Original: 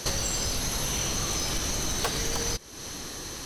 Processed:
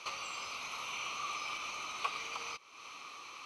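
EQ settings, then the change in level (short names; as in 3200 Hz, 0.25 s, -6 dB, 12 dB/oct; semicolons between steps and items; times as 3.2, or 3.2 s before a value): double band-pass 1700 Hz, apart 1 oct; +3.0 dB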